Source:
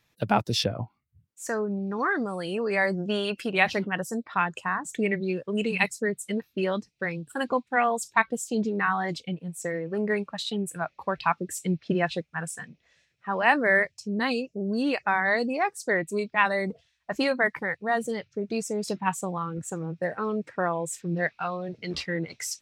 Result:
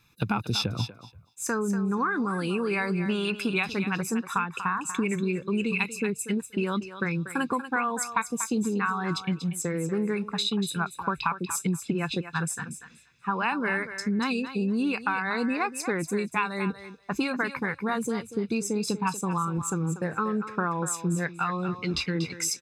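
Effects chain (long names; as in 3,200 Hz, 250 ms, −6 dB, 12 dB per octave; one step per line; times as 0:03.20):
comb filter 0.8 ms, depth 76%
downward compressor, threshold −28 dBFS, peak gain reduction 13.5 dB
on a send: feedback echo with a high-pass in the loop 239 ms, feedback 15%, high-pass 460 Hz, level −9.5 dB
on the sum: level +4 dB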